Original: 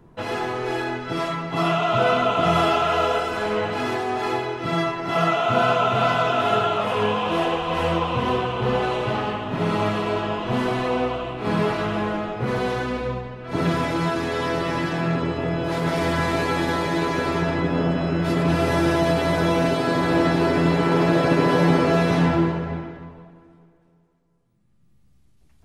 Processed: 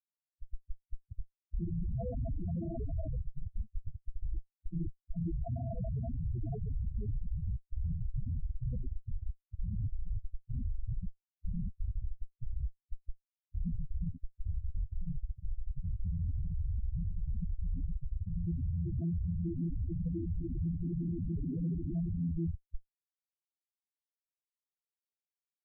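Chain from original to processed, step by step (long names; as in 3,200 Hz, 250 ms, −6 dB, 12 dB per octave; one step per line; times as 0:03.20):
feedback echo with a band-pass in the loop 499 ms, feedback 61%, band-pass 510 Hz, level −10 dB
comparator with hysteresis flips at −16 dBFS
spectral peaks only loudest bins 4
level −8 dB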